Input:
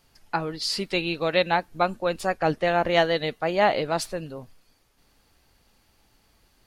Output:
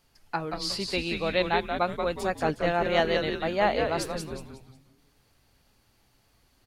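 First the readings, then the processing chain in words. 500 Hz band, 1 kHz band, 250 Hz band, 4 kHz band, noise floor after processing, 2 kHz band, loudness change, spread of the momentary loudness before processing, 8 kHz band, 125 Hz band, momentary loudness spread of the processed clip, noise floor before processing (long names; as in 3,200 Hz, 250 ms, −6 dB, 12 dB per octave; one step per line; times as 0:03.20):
−2.5 dB, −3.5 dB, −1.5 dB, −3.0 dB, −66 dBFS, −2.5 dB, −3.0 dB, 10 LU, −3.0 dB, −2.0 dB, 11 LU, −64 dBFS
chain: echo with shifted repeats 181 ms, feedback 36%, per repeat −140 Hz, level −5 dB
level −4 dB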